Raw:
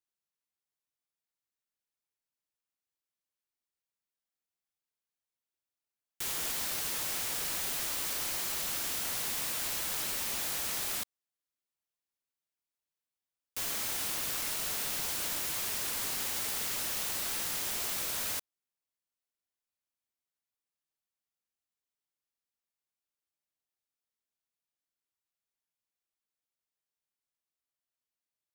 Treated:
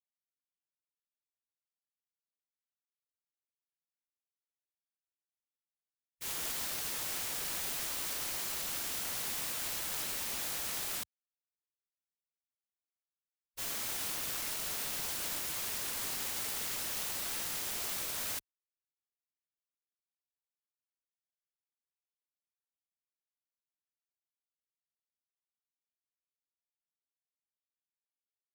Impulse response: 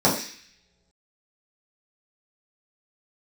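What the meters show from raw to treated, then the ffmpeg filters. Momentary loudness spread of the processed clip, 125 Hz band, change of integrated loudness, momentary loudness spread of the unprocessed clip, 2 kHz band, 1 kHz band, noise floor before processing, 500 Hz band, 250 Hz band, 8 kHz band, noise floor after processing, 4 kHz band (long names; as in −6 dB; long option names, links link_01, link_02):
2 LU, −2.5 dB, −3.0 dB, 1 LU, −3.0 dB, −3.0 dB, below −85 dBFS, −2.5 dB, −2.5 dB, −3.0 dB, below −85 dBFS, −3.0 dB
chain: -af "agate=range=-33dB:threshold=-31dB:ratio=3:detection=peak,afwtdn=0.00398"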